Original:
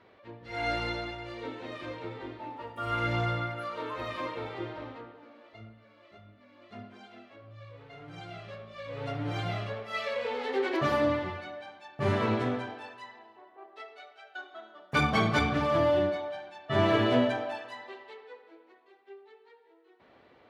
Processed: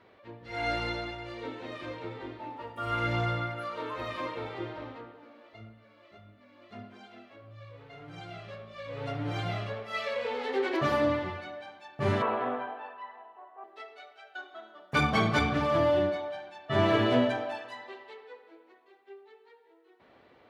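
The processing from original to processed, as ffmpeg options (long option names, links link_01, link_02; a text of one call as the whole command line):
ffmpeg -i in.wav -filter_complex "[0:a]asettb=1/sr,asplit=3[link_01][link_02][link_03];[link_01]atrim=end=12.224[link_04];[link_02]atrim=start=12.22:end=13.64,asetpts=PTS-STARTPTS,afade=type=in:duration=0.004:curve=qsin,afade=type=out:start_time=1.416:duration=0.004:curve=qsin,highpass=frequency=200:width=0.5412,highpass=frequency=200:width=1.3066,equalizer=frequency=210:width_type=q:width=4:gain=-10,equalizer=frequency=330:width_type=q:width=4:gain=-10,equalizer=frequency=720:width_type=q:width=4:gain=6,equalizer=frequency=1100:width_type=q:width=4:gain=7,equalizer=frequency=2200:width_type=q:width=4:gain=-6,lowpass=frequency=2800:width=0.5412,lowpass=frequency=2800:width=1.3066[link_05];[link_03]atrim=start=13.636[link_06];[link_04][link_05]acrossfade=duration=0.004:curve1=hsin:curve2=qsin[link_07];[link_07][link_06]acrossfade=duration=0.004:curve1=qsin:curve2=hsin" out.wav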